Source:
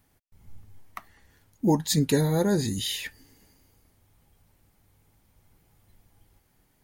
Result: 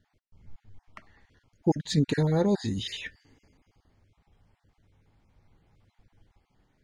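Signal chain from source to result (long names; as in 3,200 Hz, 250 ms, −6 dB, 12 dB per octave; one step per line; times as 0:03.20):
time-frequency cells dropped at random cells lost 21%
high-frequency loss of the air 130 metres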